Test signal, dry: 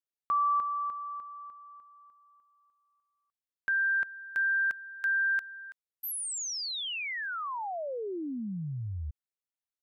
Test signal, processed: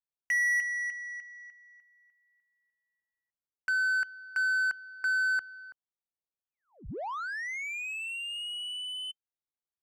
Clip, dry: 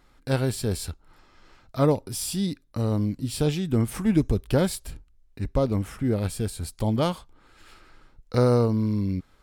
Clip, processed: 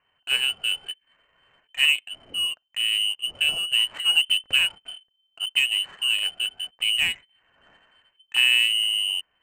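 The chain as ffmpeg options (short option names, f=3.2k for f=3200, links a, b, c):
-af "lowpass=f=2.6k:t=q:w=0.5098,lowpass=f=2.6k:t=q:w=0.6013,lowpass=f=2.6k:t=q:w=0.9,lowpass=f=2.6k:t=q:w=2.563,afreqshift=-3100,lowshelf=f=240:g=9,adynamicsmooth=sensitivity=7.5:basefreq=1.3k"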